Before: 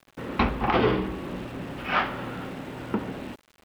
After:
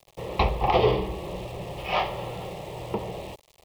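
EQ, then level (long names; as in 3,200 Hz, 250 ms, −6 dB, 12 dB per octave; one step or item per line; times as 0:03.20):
phaser with its sweep stopped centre 620 Hz, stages 4
+5.0 dB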